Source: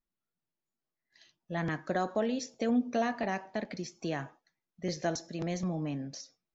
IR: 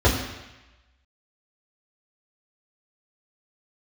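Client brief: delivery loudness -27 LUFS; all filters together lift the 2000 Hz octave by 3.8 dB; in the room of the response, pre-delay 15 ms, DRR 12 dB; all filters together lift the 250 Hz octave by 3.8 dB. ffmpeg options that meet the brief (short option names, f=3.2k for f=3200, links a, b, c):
-filter_complex "[0:a]equalizer=f=250:t=o:g=4.5,equalizer=f=2k:t=o:g=4.5,asplit=2[a][b];[1:a]atrim=start_sample=2205,adelay=15[c];[b][c]afir=irnorm=-1:irlink=0,volume=-31dB[d];[a][d]amix=inputs=2:normalize=0,volume=3.5dB"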